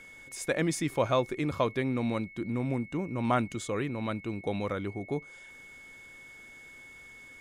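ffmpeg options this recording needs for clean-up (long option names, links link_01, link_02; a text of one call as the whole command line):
ffmpeg -i in.wav -af "bandreject=frequency=2200:width=30" out.wav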